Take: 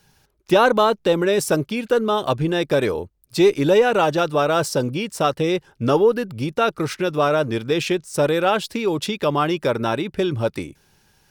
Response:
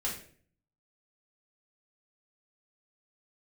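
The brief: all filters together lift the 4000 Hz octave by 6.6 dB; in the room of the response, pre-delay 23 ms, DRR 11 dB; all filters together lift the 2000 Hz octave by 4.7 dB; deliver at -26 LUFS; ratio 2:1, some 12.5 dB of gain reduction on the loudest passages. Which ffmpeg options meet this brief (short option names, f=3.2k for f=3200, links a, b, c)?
-filter_complex "[0:a]equalizer=f=2k:t=o:g=5,equalizer=f=4k:t=o:g=6.5,acompressor=threshold=-34dB:ratio=2,asplit=2[a][b];[1:a]atrim=start_sample=2205,adelay=23[c];[b][c]afir=irnorm=-1:irlink=0,volume=-15dB[d];[a][d]amix=inputs=2:normalize=0,volume=3dB"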